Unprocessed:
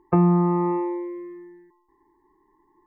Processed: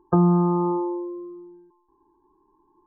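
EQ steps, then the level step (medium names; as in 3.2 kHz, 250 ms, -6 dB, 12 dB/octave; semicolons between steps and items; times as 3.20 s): brick-wall FIR low-pass 1.7 kHz; 0.0 dB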